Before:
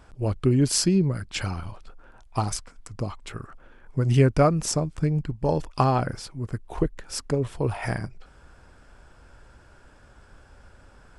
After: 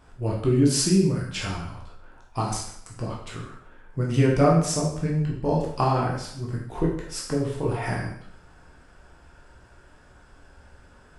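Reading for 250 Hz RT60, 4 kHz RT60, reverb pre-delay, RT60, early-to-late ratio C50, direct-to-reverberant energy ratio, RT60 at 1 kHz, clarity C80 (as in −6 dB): 0.70 s, 0.60 s, 6 ms, 0.65 s, 4.0 dB, −3.5 dB, 0.65 s, 7.5 dB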